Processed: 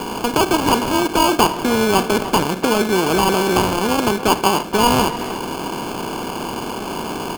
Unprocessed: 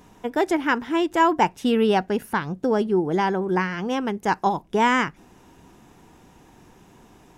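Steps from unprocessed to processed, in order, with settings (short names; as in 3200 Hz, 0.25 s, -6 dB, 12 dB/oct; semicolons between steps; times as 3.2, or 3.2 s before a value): per-bin compression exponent 0.4; sample-and-hold 23×; speakerphone echo 0.29 s, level -11 dB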